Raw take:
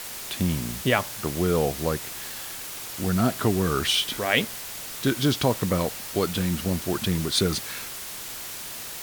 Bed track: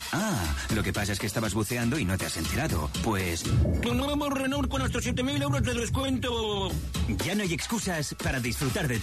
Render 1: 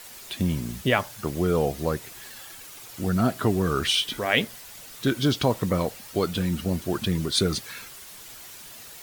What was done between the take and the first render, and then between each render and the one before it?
denoiser 9 dB, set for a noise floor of -37 dBFS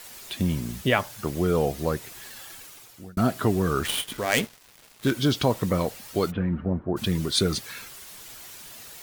2.56–3.17 fade out; 3.83–5.12 switching dead time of 0.091 ms; 6.3–6.96 LPF 2300 Hz -> 1100 Hz 24 dB/oct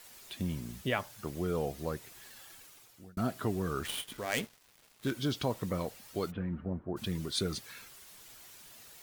gain -10 dB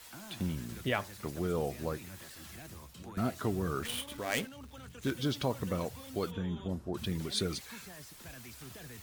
add bed track -21.5 dB

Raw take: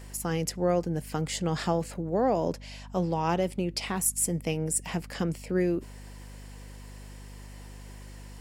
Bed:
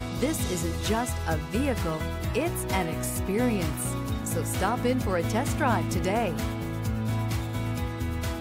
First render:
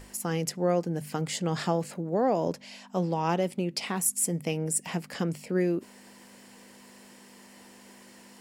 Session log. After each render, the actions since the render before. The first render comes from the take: notches 50/100/150 Hz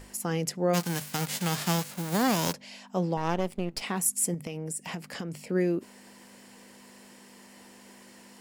0.73–2.52 spectral whitening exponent 0.3; 3.17–3.82 half-wave gain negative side -12 dB; 4.34–5.44 compressor, threshold -31 dBFS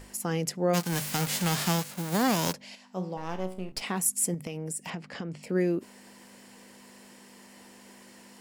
0.92–1.69 zero-crossing step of -33.5 dBFS; 2.75–3.72 resonator 62 Hz, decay 0.48 s, mix 70%; 4.9–5.43 air absorption 110 m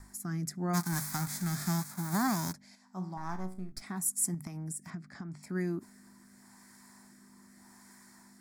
rotary speaker horn 0.85 Hz; fixed phaser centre 1200 Hz, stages 4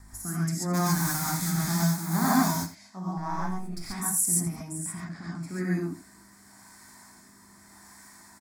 echo 83 ms -15 dB; non-linear reverb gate 0.16 s rising, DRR -6 dB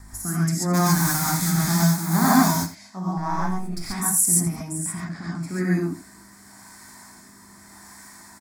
gain +6 dB

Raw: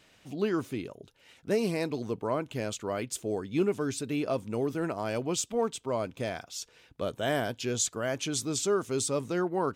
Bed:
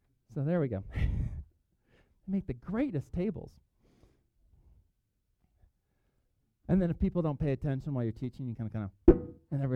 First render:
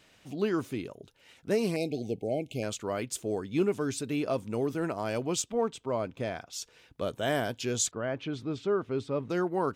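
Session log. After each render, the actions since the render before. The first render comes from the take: 1.76–2.63 brick-wall FIR band-stop 820–2100 Hz; 5.42–6.53 high shelf 5200 Hz -11.5 dB; 7.91–9.3 air absorption 380 m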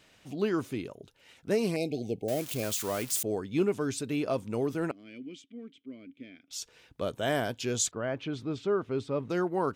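2.28–3.23 switching spikes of -27 dBFS; 4.91–6.51 vowel filter i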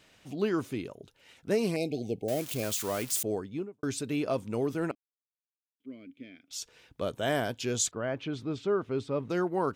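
3.29–3.83 studio fade out; 4.95–5.8 mute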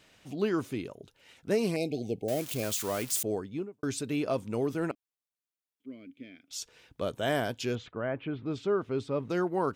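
7.75–8.46 LPF 2700 Hz 24 dB/oct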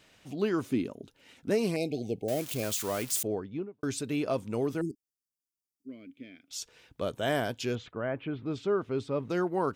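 0.7–1.5 bell 250 Hz +9.5 dB; 3.27–3.81 air absorption 170 m; 4.81–5.89 brick-wall FIR band-stop 420–4500 Hz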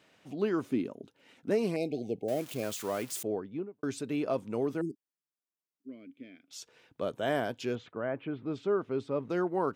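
Bessel high-pass 170 Hz, order 2; high shelf 2700 Hz -8.5 dB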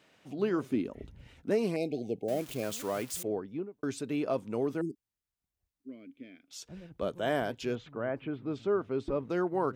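add bed -20 dB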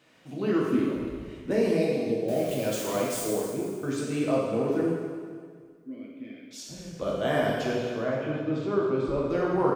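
feedback echo 0.259 s, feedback 45%, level -16.5 dB; plate-style reverb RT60 1.7 s, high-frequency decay 0.9×, DRR -4.5 dB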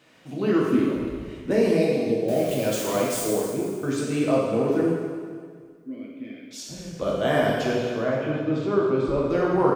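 gain +4 dB

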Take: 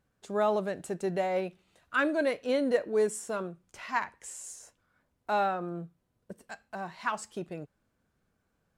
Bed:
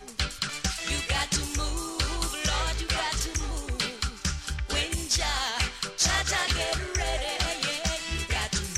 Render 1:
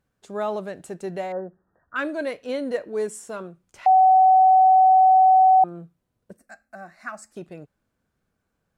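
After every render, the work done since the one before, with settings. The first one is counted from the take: 1.32–1.96 brick-wall FIR low-pass 1900 Hz; 3.86–5.64 bleep 754 Hz -11 dBFS; 6.37–7.36 fixed phaser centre 640 Hz, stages 8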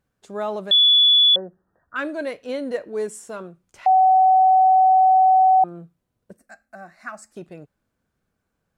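0.71–1.36 bleep 3430 Hz -11 dBFS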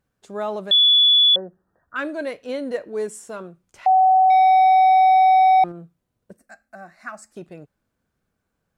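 4.3–5.72 sample leveller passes 1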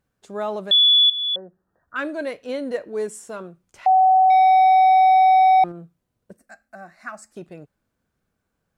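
1.1–1.98 fade in, from -15 dB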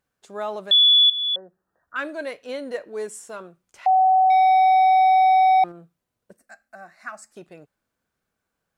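low shelf 370 Hz -9.5 dB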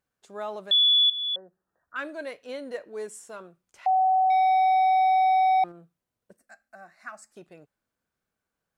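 gain -5 dB

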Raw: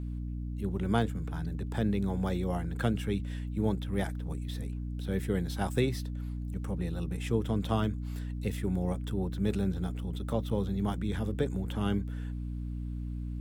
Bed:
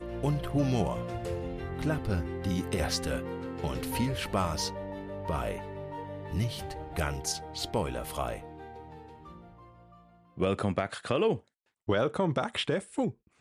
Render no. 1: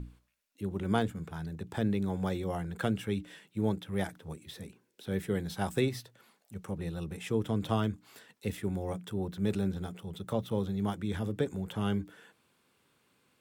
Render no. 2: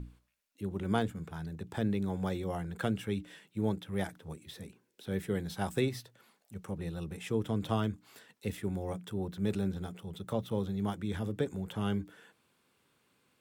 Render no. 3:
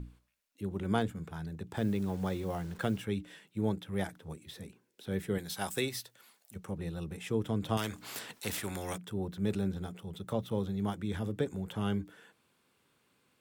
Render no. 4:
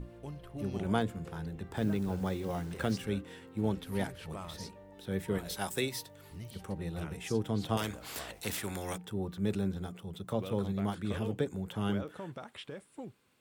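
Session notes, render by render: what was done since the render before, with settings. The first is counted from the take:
notches 60/120/180/240/300 Hz
gain -1.5 dB
1.77–3.02 level-crossing sampler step -50.5 dBFS; 5.38–6.56 tilt +2.5 dB/oct; 7.77–8.98 spectral compressor 2:1
add bed -15 dB

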